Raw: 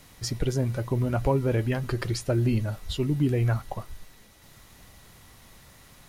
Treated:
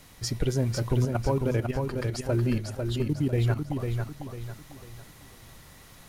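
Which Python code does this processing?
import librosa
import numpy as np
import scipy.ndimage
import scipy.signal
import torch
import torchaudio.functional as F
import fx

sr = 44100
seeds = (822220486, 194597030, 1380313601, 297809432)

y = fx.level_steps(x, sr, step_db=12, at=(1.05, 3.8))
y = fx.echo_feedback(y, sr, ms=498, feedback_pct=37, wet_db=-5.0)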